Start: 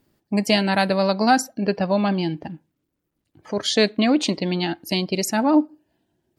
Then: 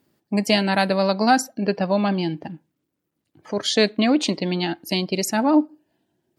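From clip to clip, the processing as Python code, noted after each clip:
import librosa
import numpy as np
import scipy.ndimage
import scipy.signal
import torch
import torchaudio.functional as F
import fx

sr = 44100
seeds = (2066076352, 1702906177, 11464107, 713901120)

y = scipy.signal.sosfilt(scipy.signal.butter(2, 110.0, 'highpass', fs=sr, output='sos'), x)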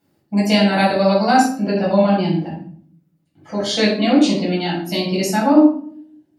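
y = fx.room_shoebox(x, sr, seeds[0], volume_m3=680.0, walls='furnished', distance_m=7.5)
y = y * librosa.db_to_amplitude(-7.0)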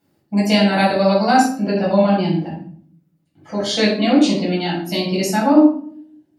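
y = x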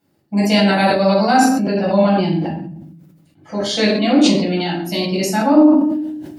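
y = fx.sustainer(x, sr, db_per_s=40.0)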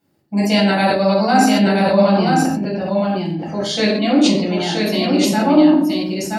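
y = x + 10.0 ** (-3.5 / 20.0) * np.pad(x, (int(975 * sr / 1000.0), 0))[:len(x)]
y = y * librosa.db_to_amplitude(-1.0)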